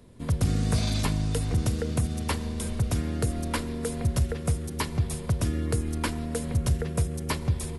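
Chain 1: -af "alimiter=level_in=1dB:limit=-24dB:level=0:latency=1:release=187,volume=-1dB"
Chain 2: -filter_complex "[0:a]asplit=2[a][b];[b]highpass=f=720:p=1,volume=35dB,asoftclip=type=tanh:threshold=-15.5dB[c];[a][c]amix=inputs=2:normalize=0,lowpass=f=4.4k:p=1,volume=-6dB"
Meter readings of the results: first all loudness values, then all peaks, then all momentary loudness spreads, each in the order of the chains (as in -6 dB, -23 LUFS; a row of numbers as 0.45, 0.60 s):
-35.0, -23.0 LUFS; -25.0, -15.5 dBFS; 2, 1 LU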